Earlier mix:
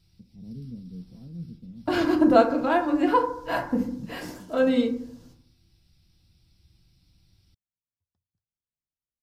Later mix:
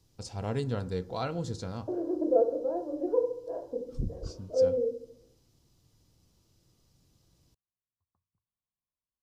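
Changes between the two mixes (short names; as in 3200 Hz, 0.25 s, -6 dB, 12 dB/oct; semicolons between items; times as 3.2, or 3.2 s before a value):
first voice: remove Butterworth band-pass 190 Hz, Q 1.9; second voice: add Butterworth band-pass 460 Hz, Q 2.5; background: add synth low-pass 1100 Hz, resonance Q 6.9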